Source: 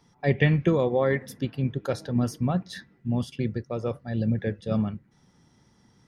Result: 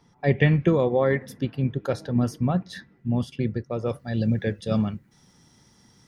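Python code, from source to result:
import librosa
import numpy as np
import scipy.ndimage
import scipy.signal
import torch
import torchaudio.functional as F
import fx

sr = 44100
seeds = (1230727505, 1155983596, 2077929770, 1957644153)

y = fx.high_shelf(x, sr, hz=3500.0, db=fx.steps((0.0, -4.5), (3.88, 10.0)))
y = y * 10.0 ** (2.0 / 20.0)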